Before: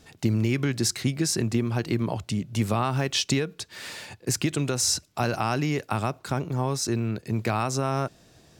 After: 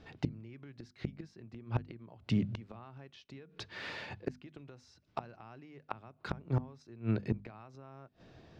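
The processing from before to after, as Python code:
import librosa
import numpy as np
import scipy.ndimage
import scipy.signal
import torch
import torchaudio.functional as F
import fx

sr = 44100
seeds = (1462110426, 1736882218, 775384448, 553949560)

y = fx.gate_flip(x, sr, shuts_db=-18.0, range_db=-25)
y = fx.air_absorb(y, sr, metres=260.0)
y = fx.hum_notches(y, sr, base_hz=50, count=5)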